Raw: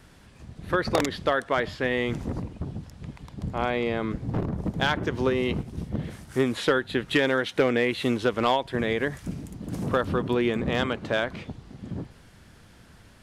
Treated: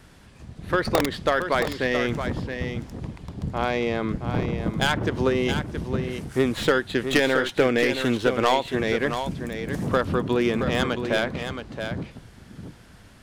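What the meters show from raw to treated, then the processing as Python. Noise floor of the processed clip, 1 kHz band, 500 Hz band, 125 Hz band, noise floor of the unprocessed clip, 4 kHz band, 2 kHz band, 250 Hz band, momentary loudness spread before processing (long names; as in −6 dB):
−50 dBFS, +2.5 dB, +2.5 dB, +2.5 dB, −53 dBFS, +3.0 dB, +2.5 dB, +2.5 dB, 14 LU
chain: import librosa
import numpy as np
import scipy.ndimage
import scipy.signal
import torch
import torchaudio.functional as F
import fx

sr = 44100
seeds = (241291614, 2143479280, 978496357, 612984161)

y = fx.tracing_dist(x, sr, depth_ms=0.13)
y = y + 10.0 ** (-8.0 / 20.0) * np.pad(y, (int(672 * sr / 1000.0), 0))[:len(y)]
y = y * librosa.db_to_amplitude(2.0)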